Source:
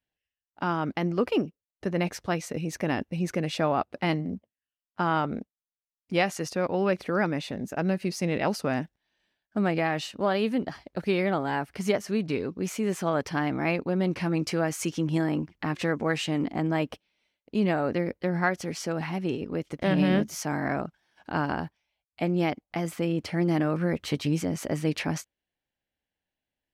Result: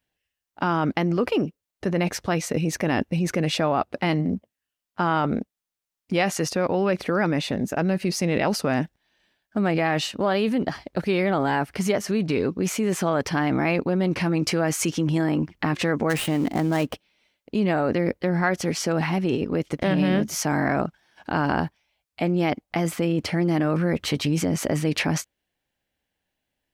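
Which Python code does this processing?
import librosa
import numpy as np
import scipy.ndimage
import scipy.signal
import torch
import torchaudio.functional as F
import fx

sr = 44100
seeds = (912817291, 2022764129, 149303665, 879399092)

p1 = fx.dead_time(x, sr, dead_ms=0.091, at=(16.09, 16.92), fade=0.02)
p2 = fx.over_compress(p1, sr, threshold_db=-30.0, ratio=-1.0)
y = p1 + F.gain(torch.from_numpy(p2), 0.0).numpy()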